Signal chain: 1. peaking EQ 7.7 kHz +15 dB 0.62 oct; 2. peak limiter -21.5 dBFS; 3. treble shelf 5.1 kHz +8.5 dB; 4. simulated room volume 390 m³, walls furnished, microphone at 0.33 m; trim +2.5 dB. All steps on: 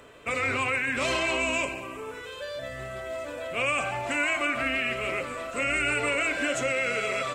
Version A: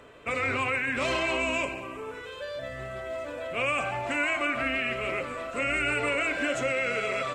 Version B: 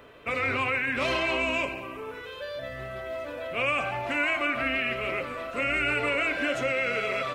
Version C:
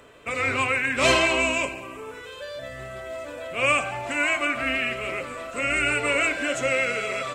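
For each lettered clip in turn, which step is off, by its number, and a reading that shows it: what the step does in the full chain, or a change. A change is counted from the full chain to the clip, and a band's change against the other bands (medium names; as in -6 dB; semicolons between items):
3, 8 kHz band -5.5 dB; 1, 8 kHz band -12.0 dB; 2, mean gain reduction 1.5 dB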